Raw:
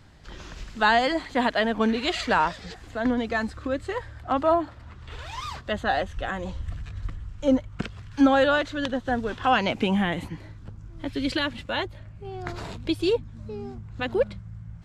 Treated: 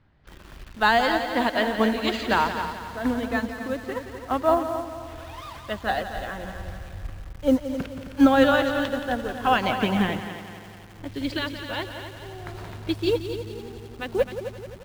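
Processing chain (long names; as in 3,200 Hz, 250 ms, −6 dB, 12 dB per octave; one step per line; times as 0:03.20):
low-pass that shuts in the quiet parts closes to 2,600 Hz, open at −17.5 dBFS
echo machine with several playback heads 87 ms, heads second and third, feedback 55%, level −8 dB
in parallel at −4 dB: bit-depth reduction 6 bits, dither none
0:10.22–0:10.99: on the sum: low-shelf EQ 140 Hz −11 dB
expander for the loud parts 1.5 to 1, over −25 dBFS
level −1.5 dB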